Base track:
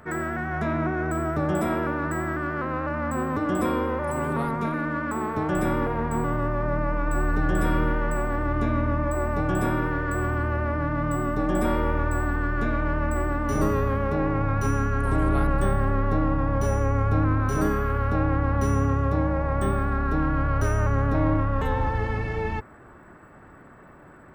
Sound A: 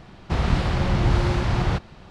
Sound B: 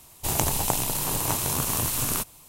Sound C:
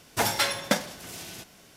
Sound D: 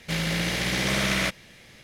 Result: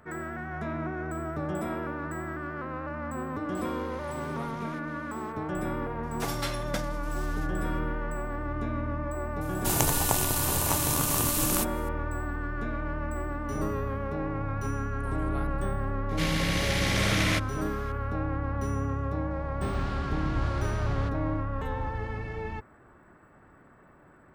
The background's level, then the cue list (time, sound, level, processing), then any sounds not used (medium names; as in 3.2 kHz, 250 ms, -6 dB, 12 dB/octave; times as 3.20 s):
base track -7.5 dB
3.49 s: add D -9 dB + compression 5:1, threshold -42 dBFS
6.03 s: add C -10 dB
9.41 s: add B -1 dB
16.09 s: add D -2.5 dB + resampled via 32 kHz
19.31 s: add A -12.5 dB